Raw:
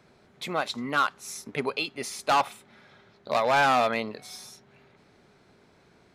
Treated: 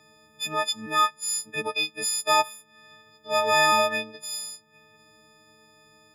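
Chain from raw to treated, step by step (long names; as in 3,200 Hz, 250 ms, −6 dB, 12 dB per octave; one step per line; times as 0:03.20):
every partial snapped to a pitch grid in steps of 6 semitones
transient designer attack −2 dB, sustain −6 dB
level −2.5 dB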